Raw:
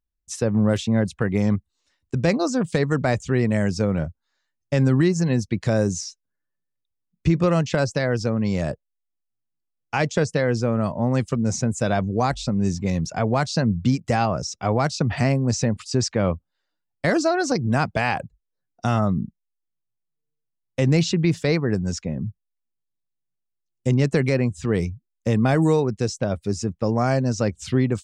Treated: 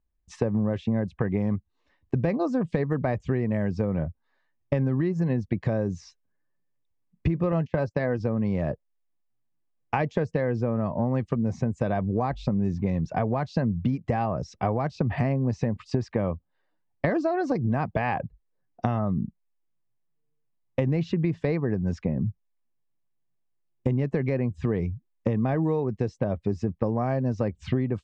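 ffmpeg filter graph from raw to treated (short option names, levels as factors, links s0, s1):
-filter_complex "[0:a]asettb=1/sr,asplit=3[s0][s1][s2];[s0]atrim=end=7.524[s3];[s1]atrim=start=7.52:end=8.2,asetpts=PTS-STARTPTS,afade=t=in:d=0.004:c=qsin,afade=t=out:st=0.676:d=0.004:c=qsin,asplit=2[s4][s5];[s5]adelay=12,volume=0.251[s6];[s4][s6]amix=inputs=2:normalize=0,atrim=end_sample=29988,agate=range=0.126:threshold=0.0398:ratio=16:release=100:detection=peak[s7];[s2]atrim=start=8.196[s8];[s3][s7]acrossfade=d=0.004:c1=hsin:c2=qsin[s9];[s9][s8]acrossfade=d=0.004:c1=qsin:c2=hsin,lowpass=1800,bandreject=f=1400:w=6.1,acompressor=threshold=0.0355:ratio=6,volume=2.11"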